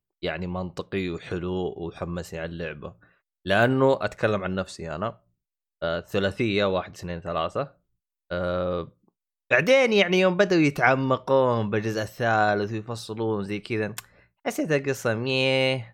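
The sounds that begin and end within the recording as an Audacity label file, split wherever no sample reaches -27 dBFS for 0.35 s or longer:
3.470000	5.100000	sound
5.820000	7.630000	sound
8.310000	8.830000	sound
9.510000	13.990000	sound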